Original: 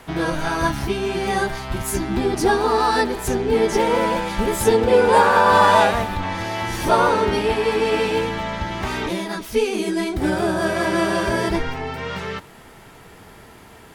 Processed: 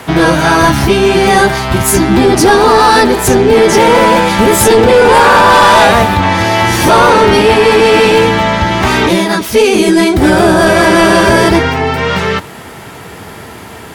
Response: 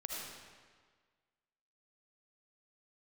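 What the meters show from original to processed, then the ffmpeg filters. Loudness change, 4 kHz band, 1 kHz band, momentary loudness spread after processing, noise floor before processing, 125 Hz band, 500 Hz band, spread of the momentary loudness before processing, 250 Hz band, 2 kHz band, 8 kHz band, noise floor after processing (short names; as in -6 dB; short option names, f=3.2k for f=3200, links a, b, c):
+12.0 dB, +14.5 dB, +11.0 dB, 6 LU, -45 dBFS, +13.5 dB, +11.5 dB, 12 LU, +13.5 dB, +13.0 dB, +15.0 dB, -30 dBFS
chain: -af "highpass=f=62:w=0.5412,highpass=f=62:w=1.3066,apsyclip=17dB,volume=-1.5dB"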